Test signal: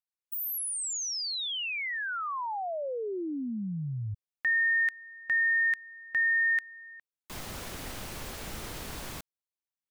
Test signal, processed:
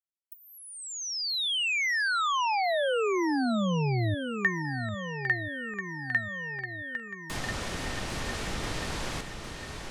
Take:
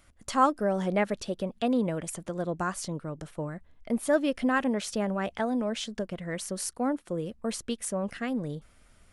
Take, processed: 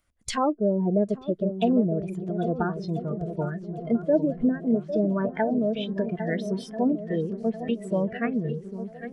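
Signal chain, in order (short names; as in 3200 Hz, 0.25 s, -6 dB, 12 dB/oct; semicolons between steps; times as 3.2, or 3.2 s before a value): treble ducked by the level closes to 580 Hz, closed at -23.5 dBFS; swung echo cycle 1.339 s, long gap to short 1.5:1, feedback 47%, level -8 dB; spectral noise reduction 19 dB; gain +6 dB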